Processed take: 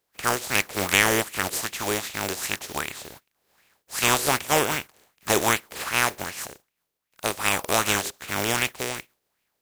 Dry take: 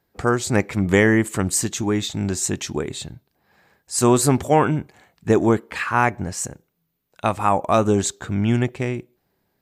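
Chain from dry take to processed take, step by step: spectral contrast reduction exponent 0.26; sweeping bell 2.6 Hz 400–2600 Hz +10 dB; trim -7.5 dB

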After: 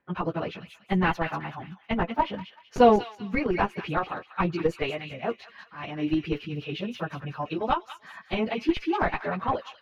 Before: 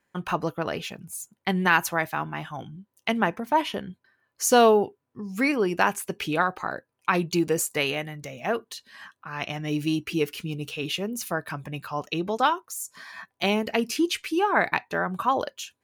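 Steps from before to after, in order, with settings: dynamic bell 1.6 kHz, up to -5 dB, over -41 dBFS, Q 3.2; plain phase-vocoder stretch 0.62×; in parallel at -3.5 dB: Schmitt trigger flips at -19.5 dBFS; on the sum: distance through air 300 m; on a send: feedback echo behind a high-pass 191 ms, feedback 31%, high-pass 2 kHz, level -6 dB; on the sum: trim +3 dB

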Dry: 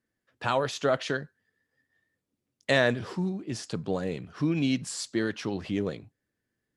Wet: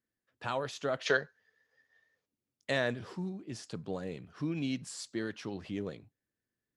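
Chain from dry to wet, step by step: time-frequency box 1.06–2.26 s, 400–6900 Hz +12 dB; trim -8 dB

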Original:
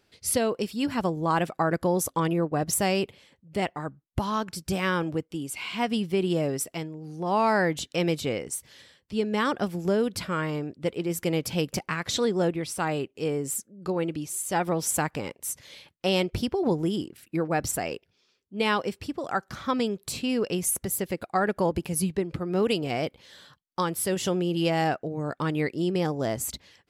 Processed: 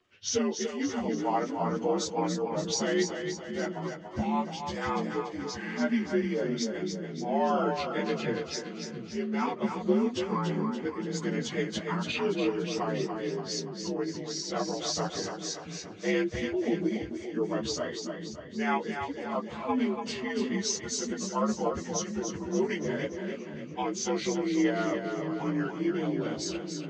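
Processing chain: frequency axis rescaled in octaves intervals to 85%; chorus voices 4, 0.32 Hz, delay 11 ms, depth 2.8 ms; two-band feedback delay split 330 Hz, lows 684 ms, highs 287 ms, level -6 dB

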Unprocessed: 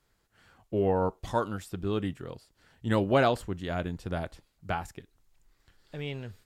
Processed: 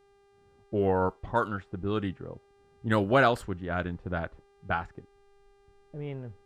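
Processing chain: dynamic bell 1.4 kHz, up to +7 dB, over -48 dBFS, Q 2.2; level-controlled noise filter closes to 320 Hz, open at -22.5 dBFS; mains buzz 400 Hz, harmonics 27, -63 dBFS -8 dB/octave

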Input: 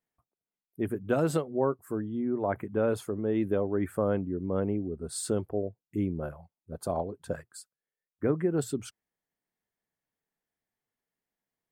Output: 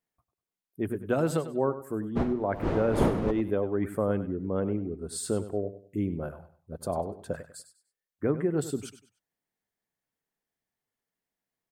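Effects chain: 2.15–3.30 s: wind noise 470 Hz -27 dBFS; feedback delay 98 ms, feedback 29%, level -13 dB

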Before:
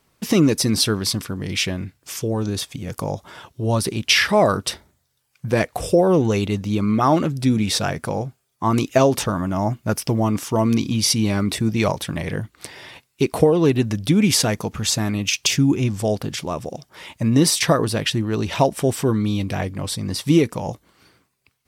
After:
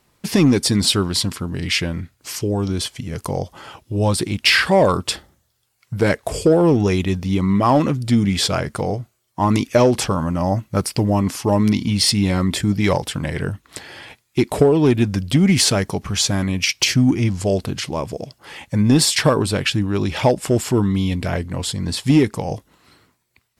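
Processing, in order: in parallel at -11.5 dB: wavefolder -11.5 dBFS; on the sum: speed mistake 48 kHz file played as 44.1 kHz

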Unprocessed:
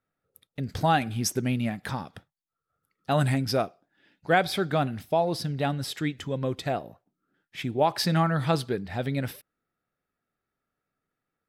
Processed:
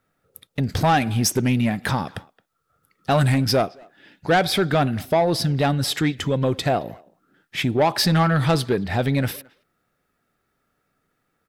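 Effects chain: in parallel at +1 dB: compression, threshold -33 dBFS, peak gain reduction 15.5 dB; on the sum: saturation -17.5 dBFS, distortion -14 dB; speakerphone echo 220 ms, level -22 dB; trim +6 dB

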